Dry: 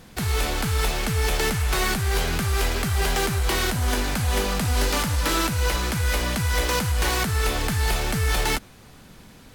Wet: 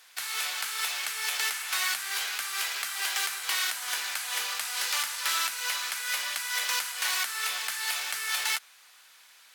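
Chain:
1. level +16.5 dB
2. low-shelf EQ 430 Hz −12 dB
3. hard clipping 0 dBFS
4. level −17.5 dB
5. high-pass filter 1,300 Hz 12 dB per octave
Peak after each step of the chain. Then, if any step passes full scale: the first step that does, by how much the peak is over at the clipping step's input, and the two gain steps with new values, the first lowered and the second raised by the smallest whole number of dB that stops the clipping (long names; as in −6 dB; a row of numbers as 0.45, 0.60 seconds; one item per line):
+3.5, +3.5, 0.0, −17.5, −14.0 dBFS
step 1, 3.5 dB
step 1 +12.5 dB, step 4 −13.5 dB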